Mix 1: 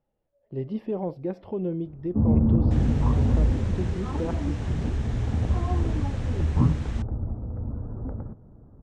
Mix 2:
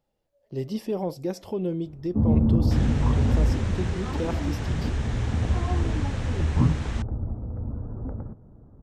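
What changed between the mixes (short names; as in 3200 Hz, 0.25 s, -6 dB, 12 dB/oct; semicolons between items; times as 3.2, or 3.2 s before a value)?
speech: remove air absorption 490 m; second sound +5.5 dB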